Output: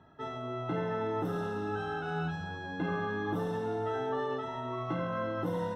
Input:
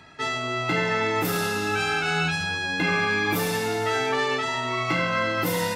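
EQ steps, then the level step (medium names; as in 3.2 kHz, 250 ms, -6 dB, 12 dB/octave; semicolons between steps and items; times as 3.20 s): boxcar filter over 19 samples; -6.0 dB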